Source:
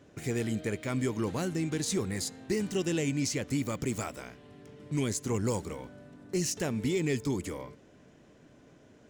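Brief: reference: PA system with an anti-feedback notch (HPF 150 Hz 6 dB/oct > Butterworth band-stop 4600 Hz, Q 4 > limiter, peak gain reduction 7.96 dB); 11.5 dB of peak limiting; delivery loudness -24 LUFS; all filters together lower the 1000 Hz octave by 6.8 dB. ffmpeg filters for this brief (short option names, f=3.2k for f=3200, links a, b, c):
-af "equalizer=f=1k:t=o:g=-9,alimiter=level_in=7.5dB:limit=-24dB:level=0:latency=1,volume=-7.5dB,highpass=f=150:p=1,asuperstop=centerf=4600:order=8:qfactor=4,volume=23dB,alimiter=limit=-14.5dB:level=0:latency=1"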